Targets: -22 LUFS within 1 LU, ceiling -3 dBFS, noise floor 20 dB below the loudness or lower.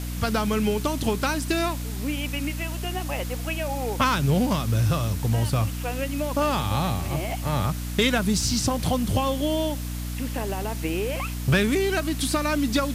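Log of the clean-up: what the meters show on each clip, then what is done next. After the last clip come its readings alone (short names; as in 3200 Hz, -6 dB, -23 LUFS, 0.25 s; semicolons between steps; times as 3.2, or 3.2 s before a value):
hum 60 Hz; harmonics up to 300 Hz; hum level -28 dBFS; noise floor -31 dBFS; noise floor target -45 dBFS; loudness -25.0 LUFS; peak -9.5 dBFS; loudness target -22.0 LUFS
-> notches 60/120/180/240/300 Hz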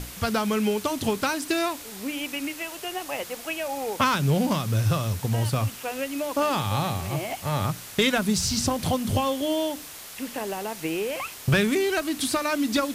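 hum none; noise floor -41 dBFS; noise floor target -46 dBFS
-> denoiser 6 dB, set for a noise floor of -41 dBFS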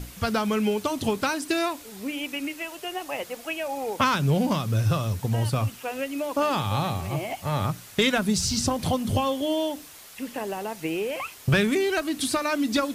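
noise floor -45 dBFS; noise floor target -47 dBFS
-> denoiser 6 dB, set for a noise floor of -45 dBFS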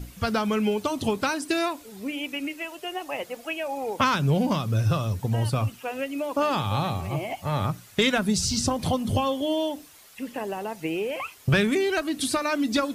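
noise floor -49 dBFS; loudness -26.5 LUFS; peak -10.0 dBFS; loudness target -22.0 LUFS
-> gain +4.5 dB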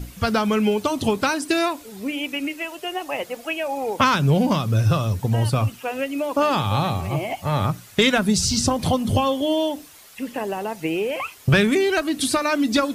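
loudness -22.0 LUFS; peak -5.5 dBFS; noise floor -45 dBFS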